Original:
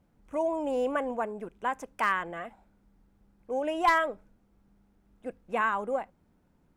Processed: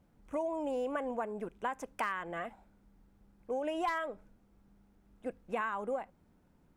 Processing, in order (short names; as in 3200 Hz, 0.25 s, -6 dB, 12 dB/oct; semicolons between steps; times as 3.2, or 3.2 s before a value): compressor 5:1, threshold -32 dBFS, peak gain reduction 12 dB